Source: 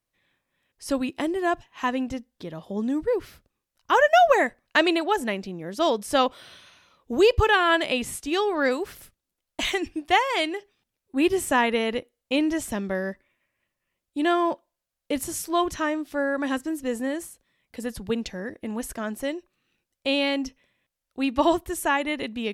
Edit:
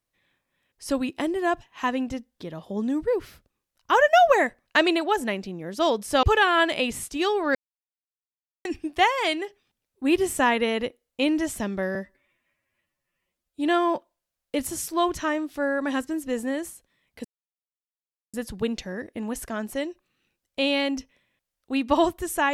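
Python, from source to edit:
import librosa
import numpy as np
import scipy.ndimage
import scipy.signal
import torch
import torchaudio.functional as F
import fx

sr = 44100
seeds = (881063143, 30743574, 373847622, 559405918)

y = fx.edit(x, sr, fx.cut(start_s=6.23, length_s=1.12),
    fx.silence(start_s=8.67, length_s=1.1),
    fx.stretch_span(start_s=13.07, length_s=1.11, factor=1.5),
    fx.insert_silence(at_s=17.81, length_s=1.09), tone=tone)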